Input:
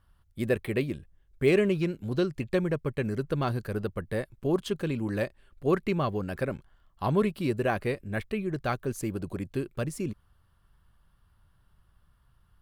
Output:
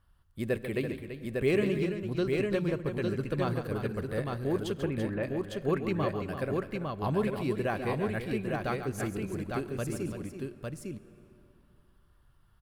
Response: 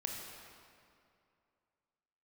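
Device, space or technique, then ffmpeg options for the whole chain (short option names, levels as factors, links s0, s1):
compressed reverb return: -filter_complex "[0:a]asplit=2[s0][s1];[1:a]atrim=start_sample=2205[s2];[s1][s2]afir=irnorm=-1:irlink=0,acompressor=threshold=0.0224:ratio=6,volume=0.422[s3];[s0][s3]amix=inputs=2:normalize=0,asettb=1/sr,asplit=3[s4][s5][s6];[s4]atrim=end=4.804[s7];[s5]atrim=start=4.8:end=5.23,asetpts=PTS-STARTPTS,afade=t=in:d=0.004:c=qsin,afade=t=out:st=0.426:d=0.004:c=qsin,lowpass=f=2600:w=0.5412,lowpass=f=2600:w=1.3066[s8];[s6]atrim=start=5.226[s9];[s7][s8]acrossfade=d=0.004:c1=hsin:c2=qsin[s10];[s10][s9]acrossfade=d=0.004:c1=qsin:c2=hsin,aecho=1:1:141|335|854:0.316|0.335|0.668,volume=0.562"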